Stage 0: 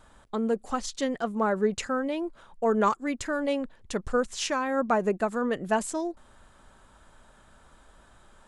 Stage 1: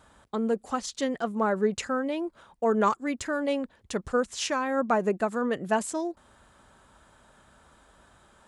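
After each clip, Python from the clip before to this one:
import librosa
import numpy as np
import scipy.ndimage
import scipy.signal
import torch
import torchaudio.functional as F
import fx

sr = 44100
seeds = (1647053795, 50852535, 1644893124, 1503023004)

y = scipy.signal.sosfilt(scipy.signal.butter(2, 55.0, 'highpass', fs=sr, output='sos'), x)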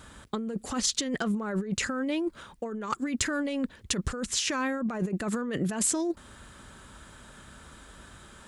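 y = fx.peak_eq(x, sr, hz=750.0, db=-9.5, octaves=1.3)
y = fx.over_compress(y, sr, threshold_db=-36.0, ratio=-1.0)
y = y * librosa.db_to_amplitude(6.0)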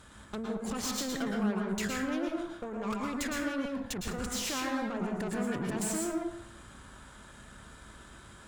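y = fx.tube_stage(x, sr, drive_db=33.0, bias=0.8)
y = fx.rev_plate(y, sr, seeds[0], rt60_s=0.68, hf_ratio=0.55, predelay_ms=100, drr_db=-0.5)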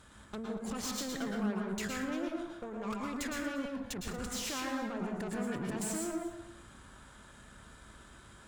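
y = x + 10.0 ** (-16.5 / 20.0) * np.pad(x, (int(234 * sr / 1000.0), 0))[:len(x)]
y = y * librosa.db_to_amplitude(-3.5)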